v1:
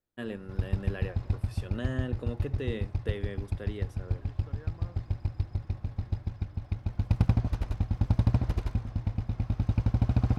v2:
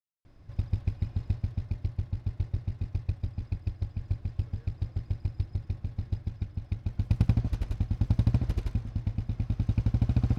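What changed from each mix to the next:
first voice: muted; second voice -9.5 dB; master: add bell 940 Hz -6.5 dB 1.7 oct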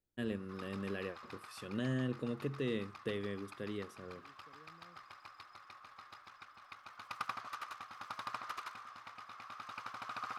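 first voice: unmuted; background: add resonant high-pass 1200 Hz, resonance Q 9

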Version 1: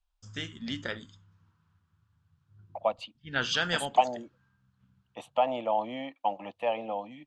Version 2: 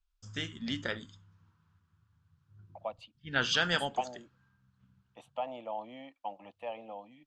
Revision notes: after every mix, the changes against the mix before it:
second voice -10.5 dB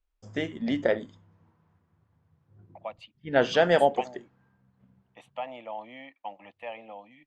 first voice: remove EQ curve 100 Hz 0 dB, 650 Hz -18 dB, 1400 Hz +6 dB; master: add bell 2000 Hz +11.5 dB 0.71 oct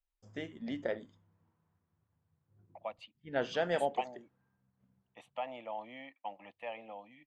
first voice -11.0 dB; second voice -3.5 dB

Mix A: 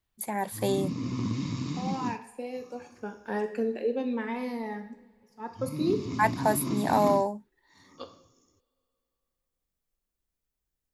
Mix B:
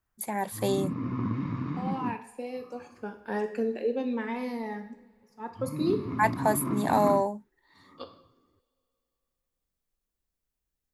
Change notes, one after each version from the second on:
background: add synth low-pass 1500 Hz, resonance Q 2.2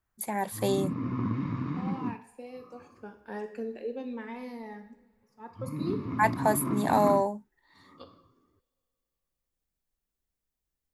second voice -7.0 dB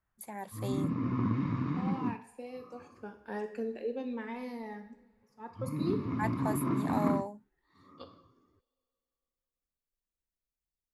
first voice -11.0 dB

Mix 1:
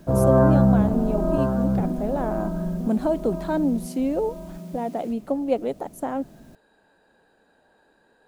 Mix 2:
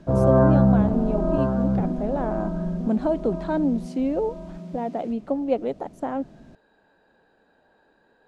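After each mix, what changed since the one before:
master: add air absorption 100 m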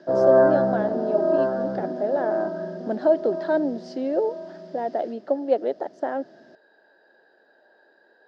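master: add speaker cabinet 360–5800 Hz, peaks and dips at 360 Hz +7 dB, 610 Hz +7 dB, 1100 Hz -5 dB, 1700 Hz +9 dB, 2400 Hz -9 dB, 5000 Hz +10 dB

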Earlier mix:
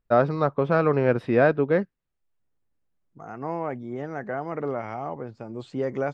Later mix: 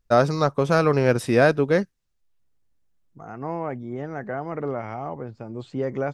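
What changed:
first voice: remove air absorption 400 m; master: add low shelf 110 Hz +8 dB

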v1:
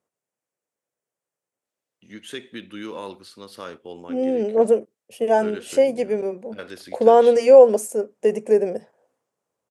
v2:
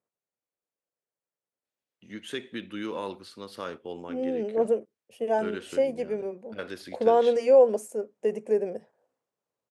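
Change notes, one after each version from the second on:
second voice -7.5 dB; master: add high shelf 5100 Hz -6 dB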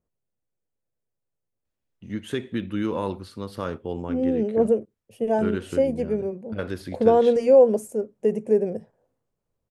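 first voice: add bell 1000 Hz +5 dB 2 oct; master: remove weighting filter A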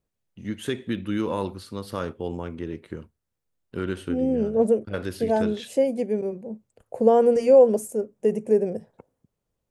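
first voice: entry -1.65 s; master: add high shelf 5100 Hz +6 dB

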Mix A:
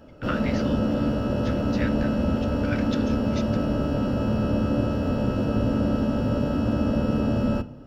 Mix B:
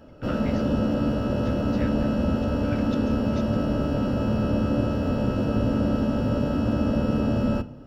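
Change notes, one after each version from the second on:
speech -7.5 dB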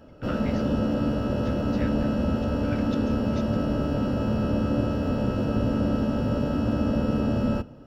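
background: send -6.5 dB

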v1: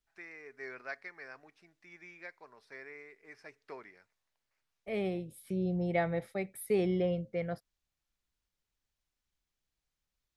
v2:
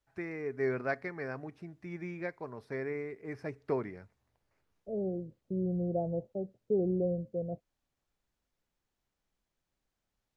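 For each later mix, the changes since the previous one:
first voice: remove band-pass 4700 Hz, Q 0.52; second voice: add steep low-pass 660 Hz 36 dB/oct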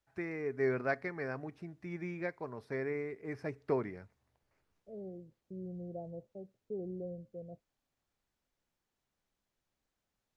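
second voice -11.0 dB

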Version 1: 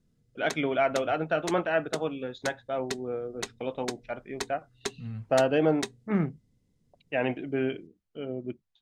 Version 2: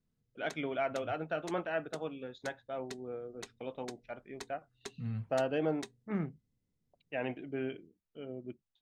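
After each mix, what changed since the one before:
first voice -8.5 dB; background -12.0 dB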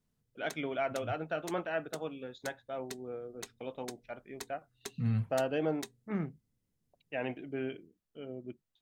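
second voice +7.0 dB; master: remove air absorption 53 m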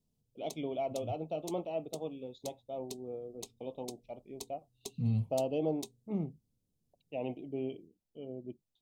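first voice: add high shelf 3600 Hz -6 dB; master: add Butterworth band-stop 1600 Hz, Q 0.75

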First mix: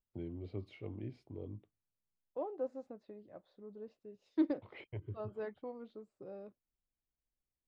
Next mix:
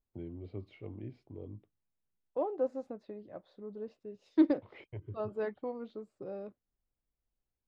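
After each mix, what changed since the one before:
first voice: add high shelf 5000 Hz -10 dB; second voice +6.5 dB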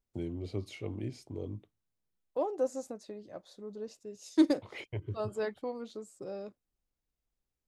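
first voice +5.5 dB; master: remove air absorption 400 m

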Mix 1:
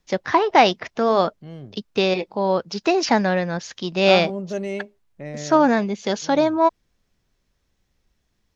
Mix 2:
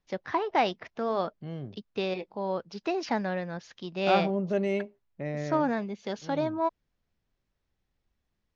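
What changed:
first voice -10.5 dB; master: add air absorption 110 m

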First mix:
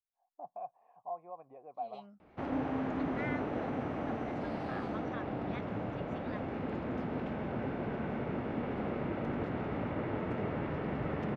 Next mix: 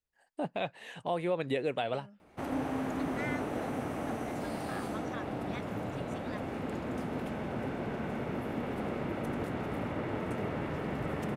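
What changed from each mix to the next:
first voice: remove vocal tract filter a; master: remove air absorption 230 m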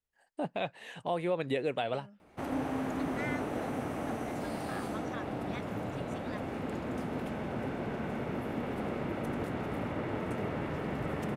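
none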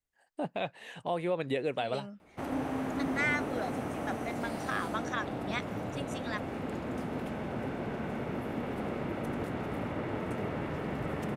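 second voice +10.0 dB

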